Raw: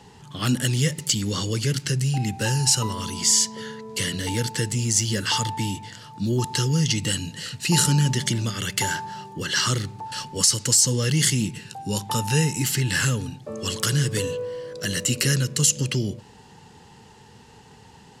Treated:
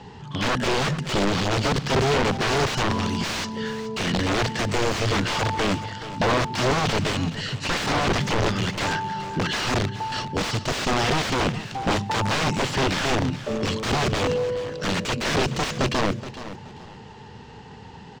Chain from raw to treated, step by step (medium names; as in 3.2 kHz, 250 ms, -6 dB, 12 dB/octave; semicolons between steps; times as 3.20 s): dynamic bell 210 Hz, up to +6 dB, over -35 dBFS, Q 0.84; in parallel at 0 dB: compression 8:1, threshold -30 dBFS, peak gain reduction 18 dB; on the sum: integer overflow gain 16 dB; distance through air 150 m; feedback delay 424 ms, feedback 26%, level -14 dB; trim +1 dB